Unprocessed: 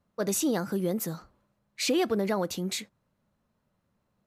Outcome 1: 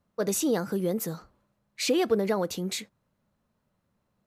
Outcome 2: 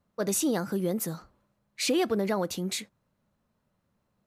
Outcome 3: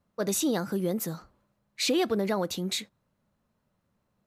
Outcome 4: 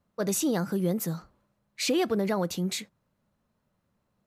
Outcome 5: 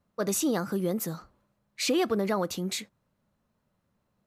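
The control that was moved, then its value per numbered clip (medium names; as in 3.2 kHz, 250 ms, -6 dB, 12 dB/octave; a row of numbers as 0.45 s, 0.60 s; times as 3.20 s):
dynamic bell, frequency: 460 Hz, 9.5 kHz, 3.8 kHz, 170 Hz, 1.2 kHz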